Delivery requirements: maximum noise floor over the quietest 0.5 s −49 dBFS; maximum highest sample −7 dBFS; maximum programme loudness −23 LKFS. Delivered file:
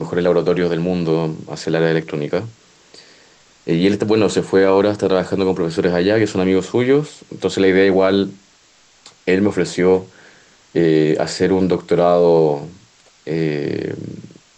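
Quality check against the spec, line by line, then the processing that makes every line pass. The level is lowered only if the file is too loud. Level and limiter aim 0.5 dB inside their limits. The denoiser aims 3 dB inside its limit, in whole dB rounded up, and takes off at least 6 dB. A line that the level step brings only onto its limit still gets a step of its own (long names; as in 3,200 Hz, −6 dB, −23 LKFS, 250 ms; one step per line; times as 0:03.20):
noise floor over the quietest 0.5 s −52 dBFS: in spec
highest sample −4.5 dBFS: out of spec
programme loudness −17.0 LKFS: out of spec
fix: level −6.5 dB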